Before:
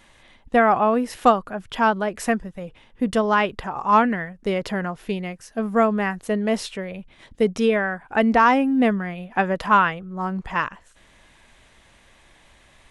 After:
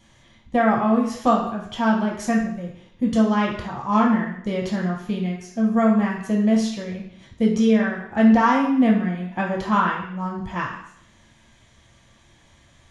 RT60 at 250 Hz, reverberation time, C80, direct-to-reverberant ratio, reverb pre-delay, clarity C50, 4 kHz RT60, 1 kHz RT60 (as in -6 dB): 0.70 s, 0.70 s, 7.5 dB, -3.0 dB, 4 ms, 4.5 dB, 0.70 s, 0.70 s